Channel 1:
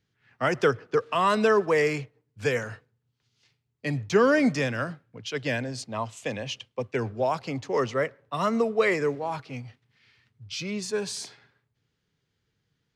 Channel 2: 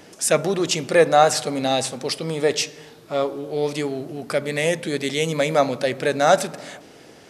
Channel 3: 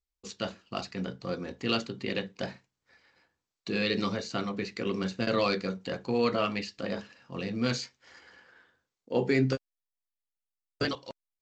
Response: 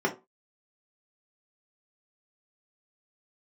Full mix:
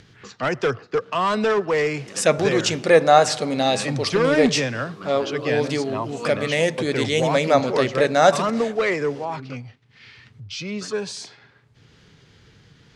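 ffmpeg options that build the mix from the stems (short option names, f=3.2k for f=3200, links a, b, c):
-filter_complex "[0:a]volume=18dB,asoftclip=hard,volume=-18dB,volume=2.5dB,asplit=2[a][b];[1:a]adelay=1950,volume=1dB[c];[2:a]equalizer=f=1.2k:t=o:w=0.77:g=13.5,volume=-5.5dB[d];[b]apad=whole_len=503356[e];[d][e]sidechaincompress=threshold=-40dB:ratio=8:attack=16:release=177[f];[a][c][f]amix=inputs=3:normalize=0,acompressor=mode=upward:threshold=-33dB:ratio=2.5,lowpass=7k"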